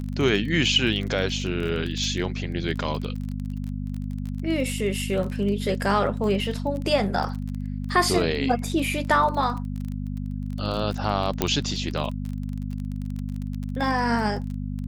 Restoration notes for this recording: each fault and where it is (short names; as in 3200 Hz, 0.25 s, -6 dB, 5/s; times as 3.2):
crackle 25/s -30 dBFS
hum 50 Hz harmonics 5 -30 dBFS
11.42 pop -6 dBFS